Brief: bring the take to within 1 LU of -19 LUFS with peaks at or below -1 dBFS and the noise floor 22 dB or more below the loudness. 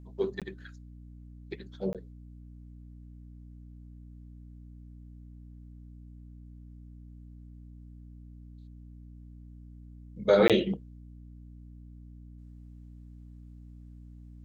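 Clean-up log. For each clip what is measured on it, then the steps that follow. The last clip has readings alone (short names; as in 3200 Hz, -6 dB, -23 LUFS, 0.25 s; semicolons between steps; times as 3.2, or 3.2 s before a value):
dropouts 3; longest dropout 17 ms; hum 60 Hz; harmonics up to 300 Hz; hum level -46 dBFS; loudness -28.5 LUFS; peak -9.5 dBFS; loudness target -19.0 LUFS
-> interpolate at 0.4/1.93/10.48, 17 ms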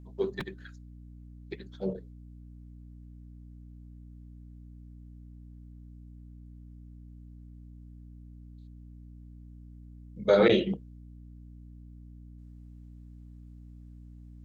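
dropouts 0; hum 60 Hz; harmonics up to 300 Hz; hum level -46 dBFS
-> de-hum 60 Hz, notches 5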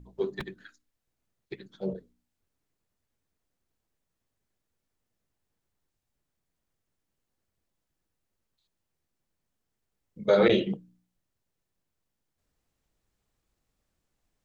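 hum none; loudness -27.0 LUFS; peak -9.5 dBFS; loudness target -19.0 LUFS
-> gain +8 dB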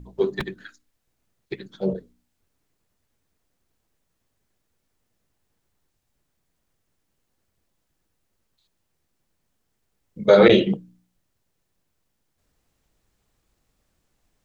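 loudness -19.0 LUFS; peak -1.5 dBFS; noise floor -75 dBFS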